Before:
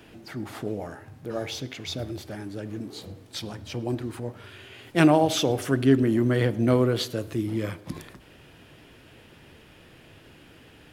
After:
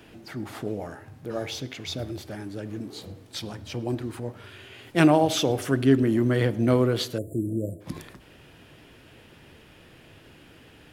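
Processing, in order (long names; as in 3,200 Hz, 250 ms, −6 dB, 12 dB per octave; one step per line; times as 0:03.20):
time-frequency box erased 0:07.18–0:07.81, 710–7,000 Hz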